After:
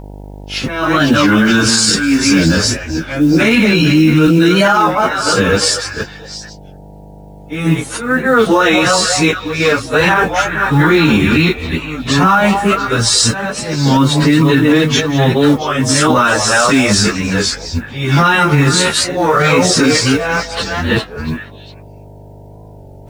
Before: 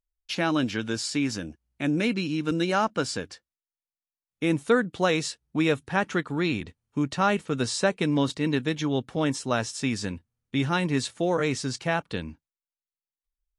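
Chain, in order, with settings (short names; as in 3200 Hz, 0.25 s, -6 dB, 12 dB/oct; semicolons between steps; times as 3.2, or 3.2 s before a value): reverse delay 0.161 s, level -7 dB; bell 1300 Hz +7.5 dB 0.76 oct; compressor 10:1, threshold -29 dBFS, peak gain reduction 16.5 dB; auto swell 0.221 s; flange 0.23 Hz, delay 6.4 ms, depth 7.3 ms, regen -11%; on a send: delay with a stepping band-pass 0.134 s, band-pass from 660 Hz, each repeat 1.4 oct, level -8 dB; on the sum: buzz 50 Hz, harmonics 19, -63 dBFS -5 dB/oct; plain phase-vocoder stretch 1.7×; modulation noise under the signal 32 dB; maximiser +33.5 dB; record warp 33 1/3 rpm, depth 100 cents; gain -1 dB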